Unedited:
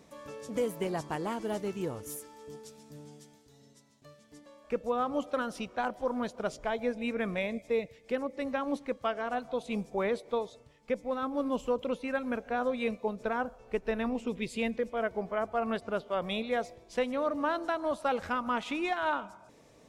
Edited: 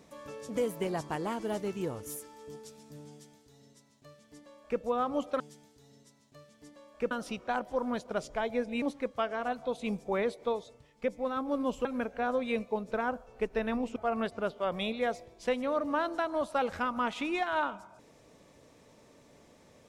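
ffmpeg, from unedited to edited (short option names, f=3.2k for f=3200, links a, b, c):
-filter_complex "[0:a]asplit=6[a][b][c][d][e][f];[a]atrim=end=5.402[g];[b]atrim=start=3.098:end=4.812[h];[c]atrim=start=5.398:end=7.112[i];[d]atrim=start=8.678:end=11.712[j];[e]atrim=start=12.168:end=14.282[k];[f]atrim=start=15.458[l];[g][h]acrossfade=d=0.004:c1=hsin:c2=hsin[m];[m][i]acrossfade=d=0.004:c1=hsin:c2=hsin[n];[n][j]acrossfade=d=0.004:c1=hsin:c2=hsin[o];[o][k]acrossfade=d=0.004:c1=hsin:c2=hsin[p];[p][l]acrossfade=d=0.004:c1=hsin:c2=hsin"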